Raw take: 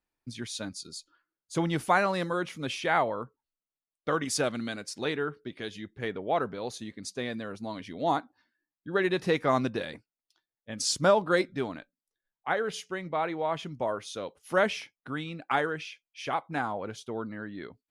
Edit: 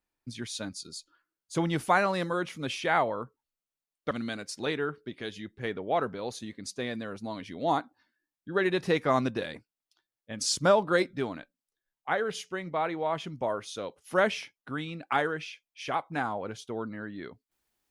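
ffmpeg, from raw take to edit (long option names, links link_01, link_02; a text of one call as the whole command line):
ffmpeg -i in.wav -filter_complex "[0:a]asplit=2[link_01][link_02];[link_01]atrim=end=4.112[link_03];[link_02]atrim=start=4.498[link_04];[link_03][link_04]acrossfade=duration=0.004:curve1=hsin:curve2=hsin" out.wav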